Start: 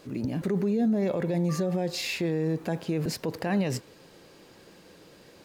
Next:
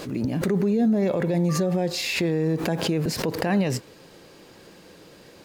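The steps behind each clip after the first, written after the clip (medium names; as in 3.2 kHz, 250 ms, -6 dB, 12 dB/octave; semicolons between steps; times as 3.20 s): swell ahead of each attack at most 69 dB/s; trim +4 dB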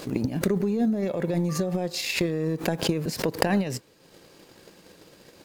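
treble shelf 5.5 kHz +5 dB; transient shaper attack +12 dB, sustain -6 dB; short-mantissa float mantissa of 8-bit; trim -4.5 dB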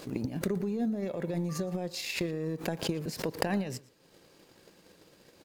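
echo from a far wall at 20 m, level -21 dB; trim -7 dB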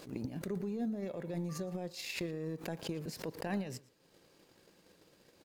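attacks held to a fixed rise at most 160 dB/s; trim -5.5 dB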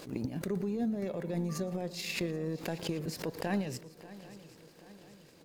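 shuffle delay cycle 782 ms, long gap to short 3:1, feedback 49%, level -18 dB; trim +4 dB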